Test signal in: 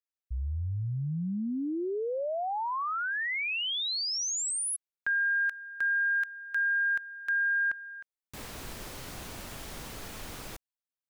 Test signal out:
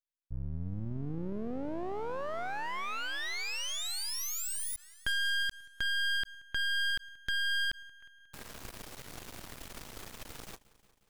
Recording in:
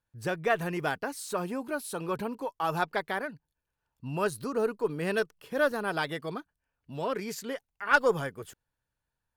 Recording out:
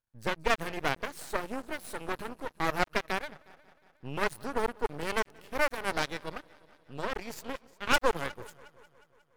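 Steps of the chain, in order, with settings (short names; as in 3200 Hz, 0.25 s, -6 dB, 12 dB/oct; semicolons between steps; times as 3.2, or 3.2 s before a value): multi-head echo 0.18 s, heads first and second, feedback 52%, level -22.5 dB; added harmonics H 2 -15 dB, 6 -10 dB, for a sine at -10.5 dBFS; half-wave rectifier; gain -2.5 dB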